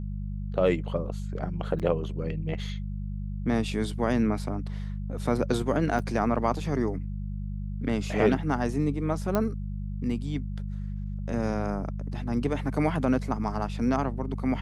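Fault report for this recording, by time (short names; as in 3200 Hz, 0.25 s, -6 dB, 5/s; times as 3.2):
hum 50 Hz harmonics 4 -33 dBFS
1.79–1.8 gap 7.3 ms
5.99 gap 2.5 ms
9.35 pop -13 dBFS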